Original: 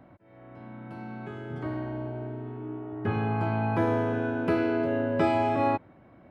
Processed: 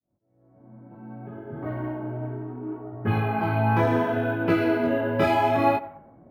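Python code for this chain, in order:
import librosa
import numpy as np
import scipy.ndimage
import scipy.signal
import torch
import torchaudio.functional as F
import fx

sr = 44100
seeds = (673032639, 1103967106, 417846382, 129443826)

y = fx.fade_in_head(x, sr, length_s=1.72)
y = fx.high_shelf(y, sr, hz=2100.0, db=7.5)
y = fx.echo_banded(y, sr, ms=94, feedback_pct=48, hz=870.0, wet_db=-16.5)
y = fx.chorus_voices(y, sr, voices=2, hz=0.67, base_ms=22, depth_ms=4.4, mix_pct=45)
y = fx.env_lowpass(y, sr, base_hz=560.0, full_db=-23.0)
y = np.interp(np.arange(len(y)), np.arange(len(y))[::3], y[::3])
y = y * 10.0 ** (5.5 / 20.0)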